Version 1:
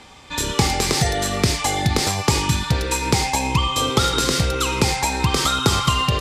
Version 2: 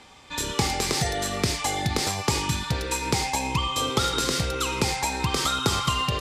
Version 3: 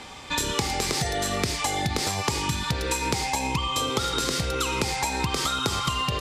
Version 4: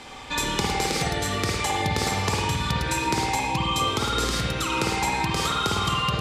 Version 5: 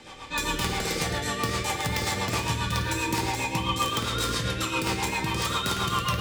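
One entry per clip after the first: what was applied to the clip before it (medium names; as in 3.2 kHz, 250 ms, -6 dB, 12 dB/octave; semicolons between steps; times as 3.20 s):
bass shelf 180 Hz -3.5 dB; trim -5 dB
compression 6:1, threshold -32 dBFS, peak gain reduction 13.5 dB; trim +8.5 dB
spring tank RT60 1.2 s, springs 52 ms, chirp 60 ms, DRR -2 dB; trim -1.5 dB
integer overflow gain 14 dB; gated-style reverb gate 210 ms falling, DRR 0 dB; rotary cabinet horn 7.5 Hz; trim -3 dB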